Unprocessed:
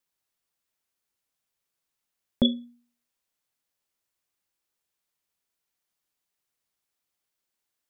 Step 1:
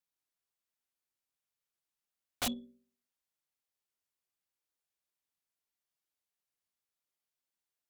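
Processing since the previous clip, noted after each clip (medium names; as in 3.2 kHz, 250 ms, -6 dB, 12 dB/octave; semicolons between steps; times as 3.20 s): de-hum 64.18 Hz, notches 9; integer overflow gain 19.5 dB; Chebyshev shaper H 6 -34 dB, 7 -36 dB, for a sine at -19.5 dBFS; trim -7.5 dB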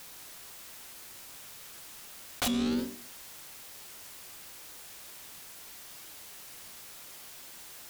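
flange 0.99 Hz, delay 8.7 ms, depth 6.8 ms, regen +83%; level flattener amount 100%; trim +7.5 dB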